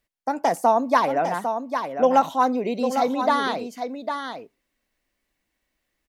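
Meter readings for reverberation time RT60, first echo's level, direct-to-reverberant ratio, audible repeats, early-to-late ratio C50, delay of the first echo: none, -7.5 dB, none, 1, none, 0.802 s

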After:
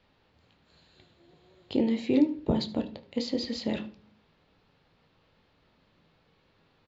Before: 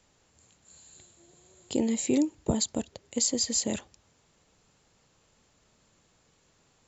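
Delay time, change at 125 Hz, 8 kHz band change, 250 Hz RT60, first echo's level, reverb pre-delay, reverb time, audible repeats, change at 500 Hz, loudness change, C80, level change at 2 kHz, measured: 75 ms, +1.5 dB, n/a, 0.70 s, -18.5 dB, 13 ms, 0.45 s, 1, +1.5 dB, -1.0 dB, 19.0 dB, +1.0 dB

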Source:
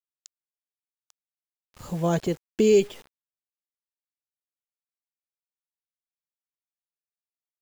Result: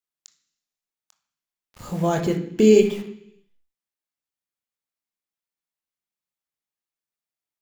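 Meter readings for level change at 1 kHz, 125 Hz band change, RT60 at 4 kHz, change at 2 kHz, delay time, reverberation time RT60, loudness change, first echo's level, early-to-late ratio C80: +4.5 dB, +3.0 dB, 0.95 s, +4.0 dB, none, 0.70 s, +4.5 dB, none, 12.0 dB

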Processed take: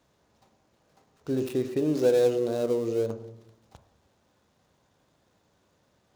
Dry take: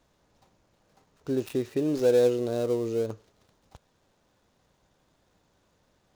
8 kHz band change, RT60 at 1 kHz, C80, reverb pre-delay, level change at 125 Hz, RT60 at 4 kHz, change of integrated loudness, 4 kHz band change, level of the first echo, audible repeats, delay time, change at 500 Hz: 0.0 dB, 0.70 s, 15.5 dB, 20 ms, +0.5 dB, 0.70 s, 0.0 dB, 0.0 dB, none, none, none, 0.0 dB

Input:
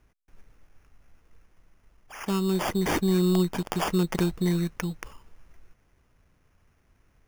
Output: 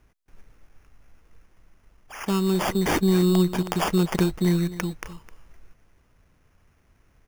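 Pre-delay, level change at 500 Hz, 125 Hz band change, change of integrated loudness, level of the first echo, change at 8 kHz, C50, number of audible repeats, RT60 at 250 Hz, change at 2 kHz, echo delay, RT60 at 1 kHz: none, +3.0 dB, +3.0 dB, +3.0 dB, -15.5 dB, +3.0 dB, none, 1, none, +3.0 dB, 0.259 s, none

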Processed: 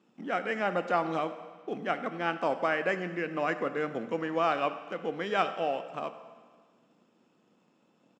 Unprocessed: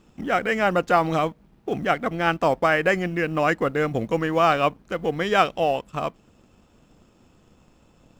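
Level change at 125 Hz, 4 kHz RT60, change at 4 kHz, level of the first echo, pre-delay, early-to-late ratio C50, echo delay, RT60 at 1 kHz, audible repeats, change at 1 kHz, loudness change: -13.5 dB, 1.5 s, -9.5 dB, -19.0 dB, 17 ms, 11.0 dB, 0.1 s, 1.6 s, 1, -8.5 dB, -8.5 dB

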